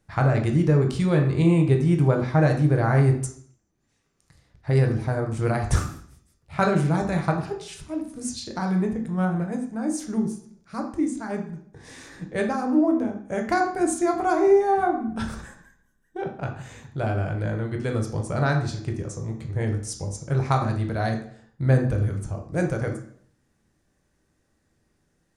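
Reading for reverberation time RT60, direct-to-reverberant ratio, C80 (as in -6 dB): 0.60 s, 2.5 dB, 11.5 dB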